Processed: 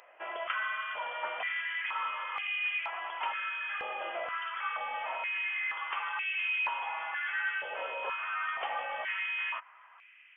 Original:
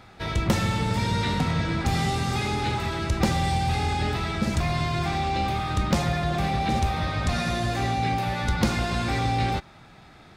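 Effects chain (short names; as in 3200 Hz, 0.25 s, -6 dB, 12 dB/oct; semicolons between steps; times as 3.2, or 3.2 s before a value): differentiator; inverted band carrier 3300 Hz; stepped high-pass 2.1 Hz 580–2400 Hz; gain +5 dB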